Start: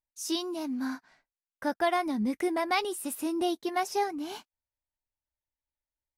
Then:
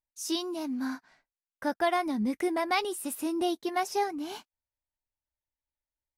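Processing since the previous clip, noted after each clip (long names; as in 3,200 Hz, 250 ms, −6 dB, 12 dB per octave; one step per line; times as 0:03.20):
no processing that can be heard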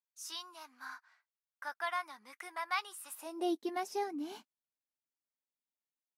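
high-pass filter sweep 1,200 Hz → 220 Hz, 0:03.07–0:03.69
level −9 dB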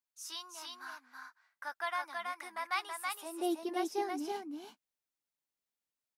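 single-tap delay 326 ms −3.5 dB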